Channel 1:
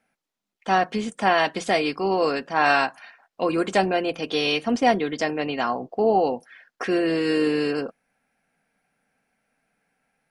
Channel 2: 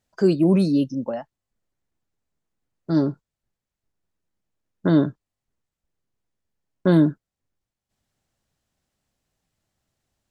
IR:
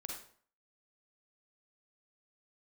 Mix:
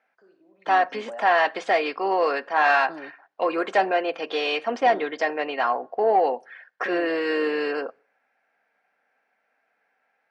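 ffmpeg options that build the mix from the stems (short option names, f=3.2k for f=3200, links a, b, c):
-filter_complex "[0:a]volume=-1.5dB,asplit=3[a][b][c];[b]volume=-23.5dB[d];[1:a]acompressor=threshold=-27dB:ratio=3,aeval=exprs='val(0)+0.00316*(sin(2*PI*50*n/s)+sin(2*PI*2*50*n/s)/2+sin(2*PI*3*50*n/s)/3+sin(2*PI*4*50*n/s)/4+sin(2*PI*5*50*n/s)/5)':c=same,volume=-8dB,asplit=2[e][f];[f]volume=-22dB[g];[c]apad=whole_len=454577[h];[e][h]sidechaingate=range=-28dB:threshold=-45dB:ratio=16:detection=peak[i];[2:a]atrim=start_sample=2205[j];[d][g]amix=inputs=2:normalize=0[k];[k][j]afir=irnorm=-1:irlink=0[l];[a][i][l]amix=inputs=3:normalize=0,equalizer=f=1.8k:w=4.2:g=3.5,asplit=2[m][n];[n]highpass=f=720:p=1,volume=14dB,asoftclip=type=tanh:threshold=-4.5dB[o];[m][o]amix=inputs=2:normalize=0,lowpass=f=1k:p=1,volume=-6dB,highpass=430,lowpass=6.5k"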